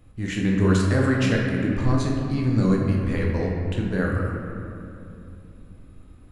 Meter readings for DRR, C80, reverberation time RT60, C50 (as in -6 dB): -2.5 dB, 2.5 dB, 2.7 s, 1.0 dB